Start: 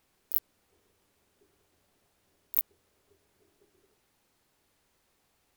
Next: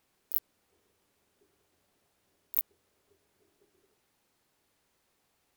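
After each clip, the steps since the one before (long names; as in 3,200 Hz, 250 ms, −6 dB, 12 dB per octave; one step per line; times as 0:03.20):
low-shelf EQ 64 Hz −7.5 dB
level −2 dB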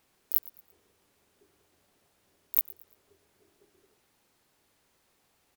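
repeating echo 113 ms, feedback 36%, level −21 dB
level +4 dB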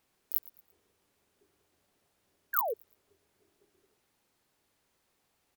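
sound drawn into the spectrogram fall, 0:02.53–0:02.74, 410–1,700 Hz −27 dBFS
level −5 dB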